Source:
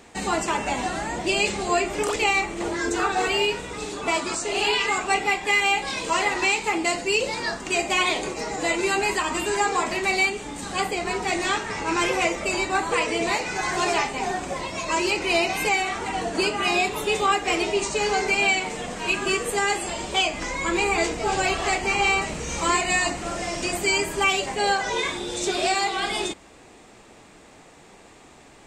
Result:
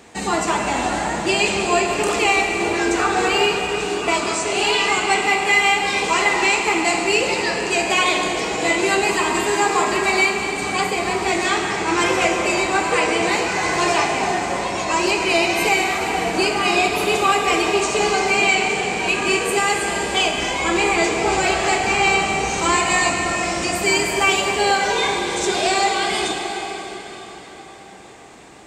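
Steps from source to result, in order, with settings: high-pass 58 Hz; plate-style reverb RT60 5 s, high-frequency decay 0.8×, DRR 1.5 dB; trim +3 dB

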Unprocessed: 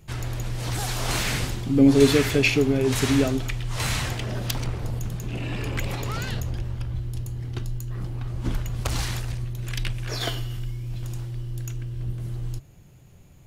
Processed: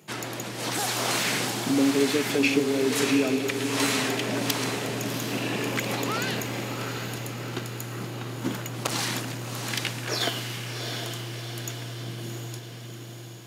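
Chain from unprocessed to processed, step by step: high-pass 190 Hz 24 dB/octave; compression 3:1, threshold -28 dBFS, peak gain reduction 12.5 dB; echo that smears into a reverb 725 ms, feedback 57%, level -5.5 dB; trim +4.5 dB

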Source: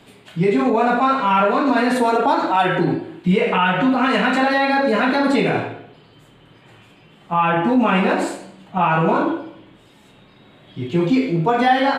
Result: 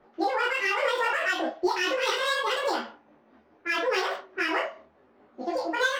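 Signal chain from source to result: local Wiener filter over 9 samples; level-controlled noise filter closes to 740 Hz, open at -13.5 dBFS; tremolo 2.4 Hz, depth 31%; speed mistake 7.5 ips tape played at 15 ips; detune thickener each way 33 cents; trim -4.5 dB

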